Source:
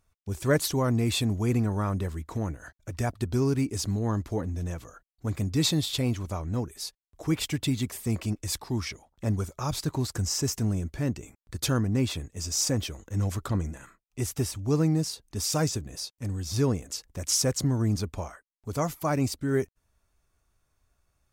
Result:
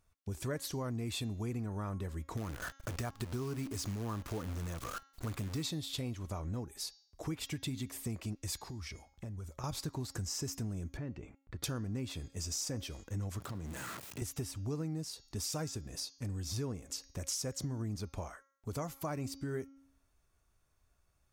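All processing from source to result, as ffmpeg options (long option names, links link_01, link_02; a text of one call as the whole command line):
ffmpeg -i in.wav -filter_complex "[0:a]asettb=1/sr,asplit=3[link_01][link_02][link_03];[link_01]atrim=end=2.374[link_04];[link_02]atrim=start=2.37:end=5.63,asetpts=PTS-STARTPTS,afade=type=in:duration=0.004:curve=qsin,afade=type=out:start_time=3.256:duration=0.004:curve=qsin,equalizer=frequency=1200:width=3:gain=8,acompressor=mode=upward:threshold=-27dB:ratio=2.5:attack=3.2:release=140:knee=2.83:detection=peak,acrusher=bits=7:dc=4:mix=0:aa=0.000001[link_05];[link_03]atrim=start=5.626[link_06];[link_04][link_05]acrossfade=duration=0.004:curve1=hsin:curve2=qsin[link_07];[link_07][link_06]acrossfade=duration=0.004:curve1=qsin:curve2=hsin,asettb=1/sr,asplit=3[link_08][link_09][link_10];[link_08]atrim=end=8.674[link_11];[link_09]atrim=start=8.67:end=9.64,asetpts=PTS-STARTPTS,afade=type=in:duration=0.004:curve=qsin,afade=type=out:start_time=0.966:duration=0.004:curve=qsin,equalizer=frequency=70:width=1.2:gain=9,acompressor=threshold=-37dB:ratio=12:attack=3.2:release=140:knee=1:detection=peak[link_12];[link_10]atrim=start=9.636[link_13];[link_11][link_12]acrossfade=duration=0.004:curve1=hsin:curve2=qsin[link_14];[link_14][link_13]acrossfade=duration=0.004:curve1=qsin:curve2=hsin,asettb=1/sr,asplit=3[link_15][link_16][link_17];[link_15]atrim=end=10.974[link_18];[link_16]atrim=start=10.97:end=11.64,asetpts=PTS-STARTPTS,afade=type=in:duration=0.004:curve=qsin,afade=type=out:start_time=0.666:duration=0.004:curve=qsin,lowpass=2400,acompressor=threshold=-38dB:ratio=2:attack=3.2:release=140:knee=1:detection=peak[link_19];[link_17]atrim=start=11.636[link_20];[link_18][link_19]acrossfade=duration=0.004:curve1=hsin:curve2=qsin[link_21];[link_21][link_20]acrossfade=duration=0.004:curve1=qsin:curve2=hsin,asettb=1/sr,asplit=3[link_22][link_23][link_24];[link_22]atrim=end=13.404[link_25];[link_23]atrim=start=13.4:end=14.22,asetpts=PTS-STARTPTS,afade=type=in:duration=0.004:curve=qsin,afade=type=out:start_time=0.816:duration=0.004:curve=qsin,aeval=exprs='val(0)+0.5*0.0178*sgn(val(0))':channel_layout=same,highpass=frequency=84:width=0.5412,highpass=frequency=84:width=1.3066,acompressor=threshold=-36dB:ratio=3:attack=3.2:release=140:knee=1:detection=peak[link_26];[link_24]atrim=start=14.216[link_27];[link_25][link_26]acrossfade=duration=0.004:curve1=hsin:curve2=qsin[link_28];[link_28][link_27]acrossfade=duration=0.004:curve1=qsin:curve2=hsin,bandreject=frequency=273:width_type=h:width=4,bandreject=frequency=546:width_type=h:width=4,bandreject=frequency=819:width_type=h:width=4,bandreject=frequency=1092:width_type=h:width=4,bandreject=frequency=1365:width_type=h:width=4,bandreject=frequency=1638:width_type=h:width=4,bandreject=frequency=1911:width_type=h:width=4,bandreject=frequency=2184:width_type=h:width=4,bandreject=frequency=2457:width_type=h:width=4,bandreject=frequency=2730:width_type=h:width=4,bandreject=frequency=3003:width_type=h:width=4,bandreject=frequency=3276:width_type=h:width=4,bandreject=frequency=3549:width_type=h:width=4,bandreject=frequency=3822:width_type=h:width=4,bandreject=frequency=4095:width_type=h:width=4,bandreject=frequency=4368:width_type=h:width=4,bandreject=frequency=4641:width_type=h:width=4,bandreject=frequency=4914:width_type=h:width=4,bandreject=frequency=5187:width_type=h:width=4,bandreject=frequency=5460:width_type=h:width=4,bandreject=frequency=5733:width_type=h:width=4,bandreject=frequency=6006:width_type=h:width=4,bandreject=frequency=6279:width_type=h:width=4,bandreject=frequency=6552:width_type=h:width=4,bandreject=frequency=6825:width_type=h:width=4,acompressor=threshold=-34dB:ratio=4,volume=-2.5dB" out.wav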